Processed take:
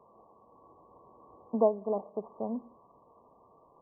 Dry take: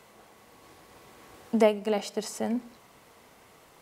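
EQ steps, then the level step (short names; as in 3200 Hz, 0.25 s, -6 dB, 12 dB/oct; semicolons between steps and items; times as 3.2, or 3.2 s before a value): brick-wall FIR low-pass 1200 Hz; low shelf 490 Hz -10 dB; bell 800 Hz -4.5 dB 0.32 oct; +2.0 dB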